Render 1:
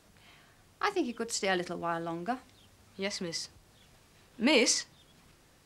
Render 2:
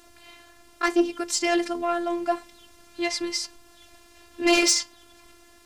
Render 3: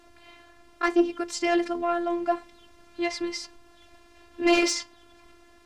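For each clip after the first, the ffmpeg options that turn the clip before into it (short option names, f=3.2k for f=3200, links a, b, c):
-af "aeval=exprs='0.237*sin(PI/2*2*val(0)/0.237)':c=same,afftfilt=real='hypot(re,im)*cos(PI*b)':imag='0':win_size=512:overlap=0.75,volume=2dB"
-af "lowpass=f=2.5k:p=1"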